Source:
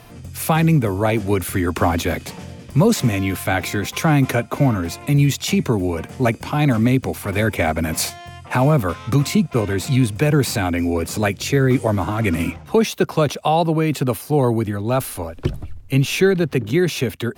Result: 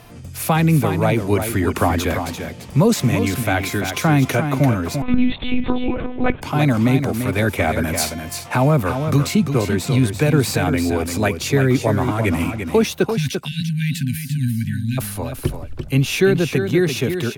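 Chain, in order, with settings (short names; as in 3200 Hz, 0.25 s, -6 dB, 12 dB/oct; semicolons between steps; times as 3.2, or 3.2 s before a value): 13.14–14.98 spectral delete 260–1500 Hz; echo 0.342 s -7.5 dB; 5.02–6.42 monotone LPC vocoder at 8 kHz 250 Hz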